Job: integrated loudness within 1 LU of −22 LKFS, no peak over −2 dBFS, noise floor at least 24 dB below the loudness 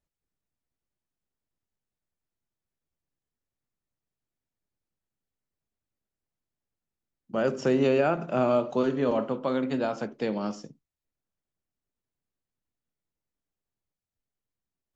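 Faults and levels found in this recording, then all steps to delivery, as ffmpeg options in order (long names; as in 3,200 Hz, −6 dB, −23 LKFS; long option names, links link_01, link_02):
integrated loudness −27.0 LKFS; sample peak −12.0 dBFS; target loudness −22.0 LKFS
→ -af "volume=5dB"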